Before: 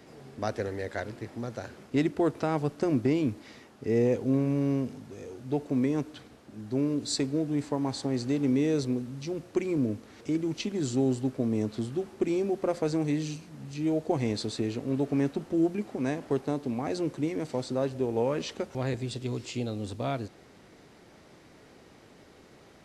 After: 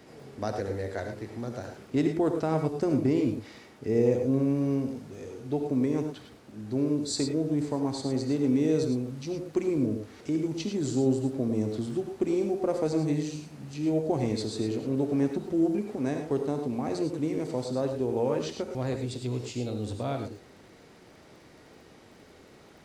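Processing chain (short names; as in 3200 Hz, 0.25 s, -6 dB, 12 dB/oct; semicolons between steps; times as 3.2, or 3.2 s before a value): dynamic EQ 2300 Hz, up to -5 dB, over -47 dBFS, Q 0.74; crackle 28/s -50 dBFS; non-linear reverb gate 0.13 s rising, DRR 5 dB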